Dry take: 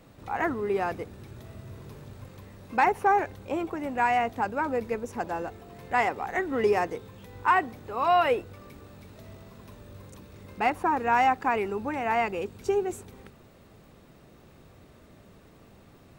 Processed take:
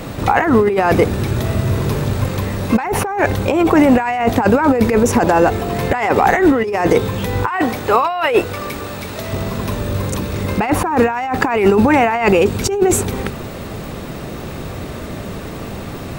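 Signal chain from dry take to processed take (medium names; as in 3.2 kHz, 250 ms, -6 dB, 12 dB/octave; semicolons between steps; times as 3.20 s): 7.49–9.33 s: bass shelf 350 Hz -9.5 dB; compressor with a negative ratio -34 dBFS, ratio -1; loudness maximiser +21 dB; trim -1 dB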